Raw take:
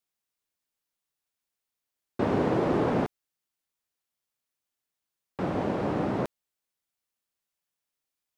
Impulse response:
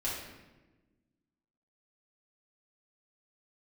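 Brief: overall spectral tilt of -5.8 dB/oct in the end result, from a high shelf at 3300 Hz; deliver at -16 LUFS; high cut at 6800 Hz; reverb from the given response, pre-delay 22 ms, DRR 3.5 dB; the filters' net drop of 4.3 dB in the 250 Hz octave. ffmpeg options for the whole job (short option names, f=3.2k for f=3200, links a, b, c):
-filter_complex "[0:a]lowpass=6.8k,equalizer=f=250:t=o:g=-6,highshelf=f=3.3k:g=5.5,asplit=2[a][b];[1:a]atrim=start_sample=2205,adelay=22[c];[b][c]afir=irnorm=-1:irlink=0,volume=-8.5dB[d];[a][d]amix=inputs=2:normalize=0,volume=13dB"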